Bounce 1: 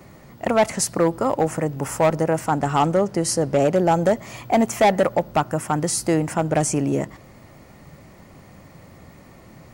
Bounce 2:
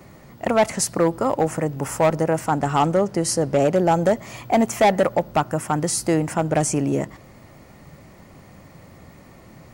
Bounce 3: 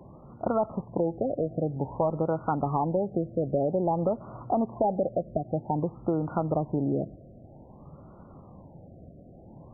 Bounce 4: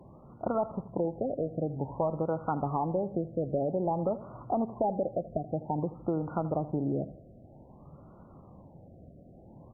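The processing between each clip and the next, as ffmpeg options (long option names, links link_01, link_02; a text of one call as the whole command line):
ffmpeg -i in.wav -af anull out.wav
ffmpeg -i in.wav -af "acompressor=threshold=-20dB:ratio=6,afftfilt=real='re*lt(b*sr/1024,730*pow(1500/730,0.5+0.5*sin(2*PI*0.52*pts/sr)))':imag='im*lt(b*sr/1024,730*pow(1500/730,0.5+0.5*sin(2*PI*0.52*pts/sr)))':win_size=1024:overlap=0.75,volume=-2.5dB" out.wav
ffmpeg -i in.wav -af "aecho=1:1:80|160|240|320:0.158|0.0666|0.028|0.0117,volume=-3.5dB" -ar 48000 -c:a libopus -b:a 96k out.opus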